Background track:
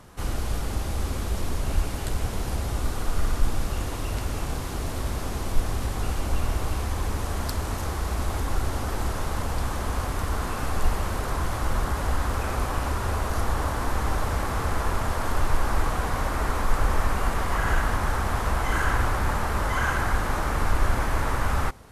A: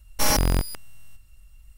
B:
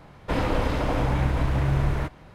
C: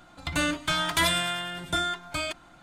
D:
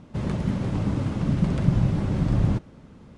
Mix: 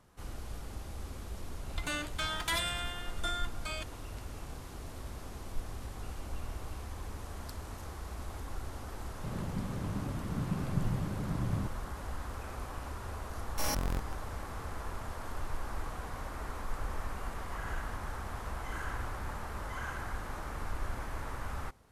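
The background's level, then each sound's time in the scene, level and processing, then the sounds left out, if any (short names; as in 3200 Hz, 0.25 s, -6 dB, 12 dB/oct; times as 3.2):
background track -14.5 dB
1.51 add C -8.5 dB + low shelf 270 Hz -11.5 dB
9.09 add D -12 dB + HPF 54 Hz
13.38 add A -12 dB + Wiener smoothing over 15 samples
not used: B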